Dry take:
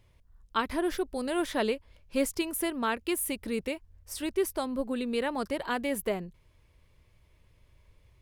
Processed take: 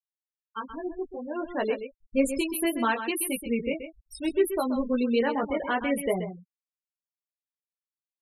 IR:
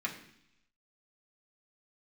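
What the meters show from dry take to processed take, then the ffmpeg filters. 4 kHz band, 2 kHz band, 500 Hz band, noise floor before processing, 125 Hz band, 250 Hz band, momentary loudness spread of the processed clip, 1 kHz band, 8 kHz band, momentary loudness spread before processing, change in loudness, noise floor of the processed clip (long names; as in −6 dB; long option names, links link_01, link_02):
−0.5 dB, +2.5 dB, +3.5 dB, −63 dBFS, +3.5 dB, +4.0 dB, 11 LU, +2.5 dB, +1.0 dB, 7 LU, +3.0 dB, below −85 dBFS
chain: -filter_complex "[0:a]flanger=delay=15.5:depth=3.7:speed=0.62,dynaudnorm=framelen=440:gausssize=7:maxgain=11.5dB,afftfilt=real='re*gte(hypot(re,im),0.0708)':imag='im*gte(hypot(re,im),0.0708)':win_size=1024:overlap=0.75,asplit=2[link_01][link_02];[link_02]aecho=0:1:129:0.316[link_03];[link_01][link_03]amix=inputs=2:normalize=0,volume=-4.5dB"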